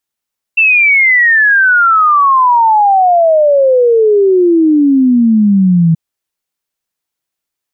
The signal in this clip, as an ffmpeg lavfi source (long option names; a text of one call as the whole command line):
ffmpeg -f lavfi -i "aevalsrc='0.562*clip(min(t,5.38-t)/0.01,0,1)*sin(2*PI*2700*5.38/log(160/2700)*(exp(log(160/2700)*t/5.38)-1))':duration=5.38:sample_rate=44100" out.wav